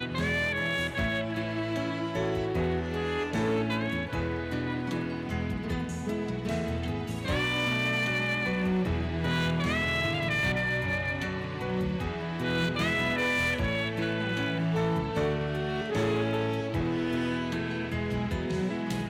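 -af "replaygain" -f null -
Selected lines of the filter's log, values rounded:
track_gain = +11.2 dB
track_peak = 0.059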